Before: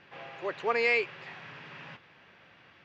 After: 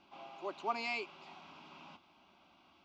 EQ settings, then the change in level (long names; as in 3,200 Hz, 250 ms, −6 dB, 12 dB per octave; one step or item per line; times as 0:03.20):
phaser with its sweep stopped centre 480 Hz, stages 6
−2.5 dB